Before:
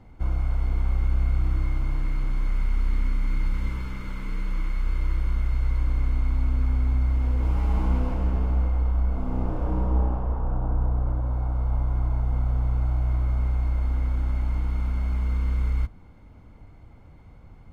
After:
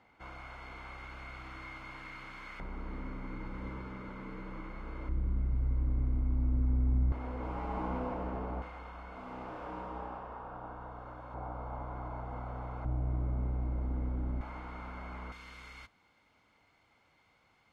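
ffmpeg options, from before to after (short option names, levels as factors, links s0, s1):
-af "asetnsamples=n=441:p=0,asendcmd='2.6 bandpass f 540;5.09 bandpass f 180;7.12 bandpass f 770;8.62 bandpass f 2200;11.34 bandpass f 910;12.85 bandpass f 300;14.41 bandpass f 1100;15.32 bandpass f 3800',bandpass=f=2100:t=q:w=0.68:csg=0"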